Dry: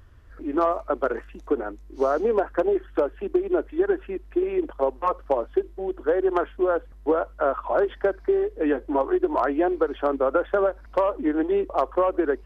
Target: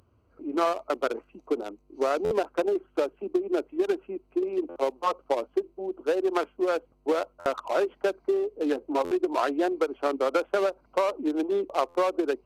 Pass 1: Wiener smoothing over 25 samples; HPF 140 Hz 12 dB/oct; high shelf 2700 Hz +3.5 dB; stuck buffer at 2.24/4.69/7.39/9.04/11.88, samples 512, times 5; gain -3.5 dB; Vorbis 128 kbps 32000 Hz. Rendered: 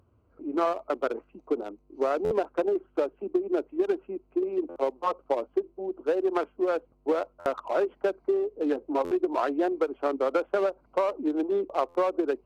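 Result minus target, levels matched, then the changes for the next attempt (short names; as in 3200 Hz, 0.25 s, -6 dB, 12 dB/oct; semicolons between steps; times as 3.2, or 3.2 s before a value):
4000 Hz band -6.0 dB
change: high shelf 2700 Hz +14.5 dB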